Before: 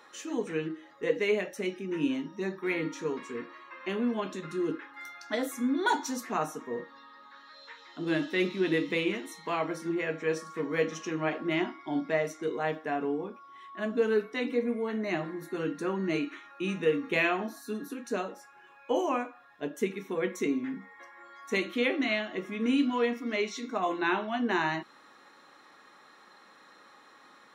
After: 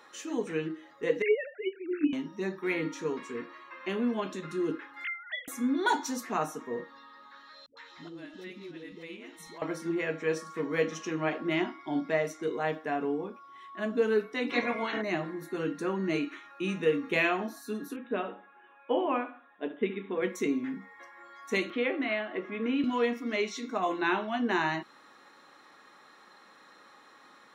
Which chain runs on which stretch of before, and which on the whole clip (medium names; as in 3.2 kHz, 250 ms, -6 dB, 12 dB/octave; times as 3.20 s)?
1.22–2.13 s: formants replaced by sine waves + peaking EQ 1.5 kHz +13 dB 0.53 oct
5.04–5.48 s: formants replaced by sine waves + high-pass 1.1 kHz 24 dB/octave + tilt EQ +2 dB/octave
7.66–9.62 s: compression 4:1, threshold -44 dBFS + phase dispersion highs, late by 110 ms, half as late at 410 Hz + tape noise reduction on one side only encoder only
14.49–15.01 s: spectral peaks clipped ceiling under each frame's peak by 25 dB + low-pass 5.8 kHz 24 dB/octave
17.96–20.22 s: brick-wall FIR band-pass 170–3900 Hz + feedback delay 72 ms, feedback 34%, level -14 dB + tape noise reduction on one side only decoder only
21.70–22.84 s: band-pass 270–2600 Hz + distance through air 68 m + three bands compressed up and down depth 40%
whole clip: none